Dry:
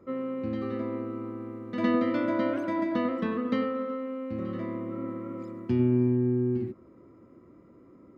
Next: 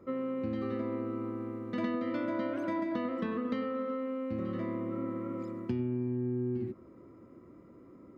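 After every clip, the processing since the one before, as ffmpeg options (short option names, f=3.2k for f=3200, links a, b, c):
-af "acompressor=threshold=-30dB:ratio=6"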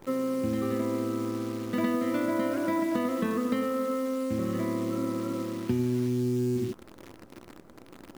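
-af "acrusher=bits=9:dc=4:mix=0:aa=0.000001,volume=5.5dB"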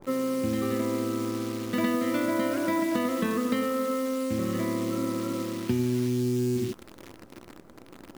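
-af "adynamicequalizer=threshold=0.00447:dfrequency=1800:dqfactor=0.7:tfrequency=1800:tqfactor=0.7:attack=5:release=100:ratio=0.375:range=2.5:mode=boostabove:tftype=highshelf,volume=1dB"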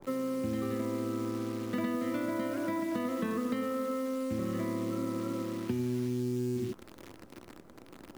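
-filter_complex "[0:a]acrossover=split=200|2000[a][b][c];[a]acompressor=threshold=-33dB:ratio=4[d];[b]acompressor=threshold=-29dB:ratio=4[e];[c]acompressor=threshold=-47dB:ratio=4[f];[d][e][f]amix=inputs=3:normalize=0,volume=-3dB"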